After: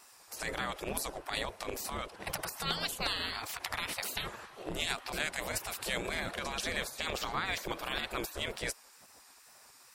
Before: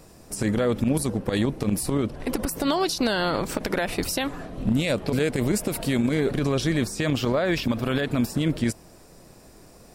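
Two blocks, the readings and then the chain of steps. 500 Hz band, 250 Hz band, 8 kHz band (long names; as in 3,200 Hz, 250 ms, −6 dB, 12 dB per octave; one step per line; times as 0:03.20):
−15.0 dB, −22.0 dB, −6.5 dB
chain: tape wow and flutter 58 cents
gate on every frequency bin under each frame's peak −15 dB weak
level −1.5 dB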